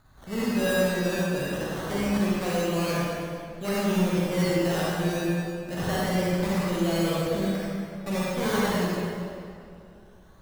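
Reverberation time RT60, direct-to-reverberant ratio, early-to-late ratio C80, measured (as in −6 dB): 2.4 s, −7.5 dB, −2.5 dB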